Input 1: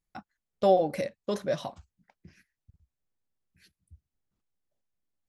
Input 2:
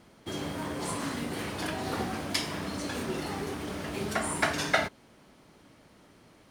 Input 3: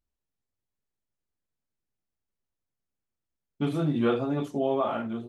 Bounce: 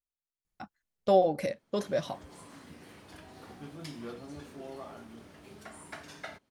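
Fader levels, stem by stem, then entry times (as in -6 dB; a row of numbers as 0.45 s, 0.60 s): -1.0 dB, -17.5 dB, -18.0 dB; 0.45 s, 1.50 s, 0.00 s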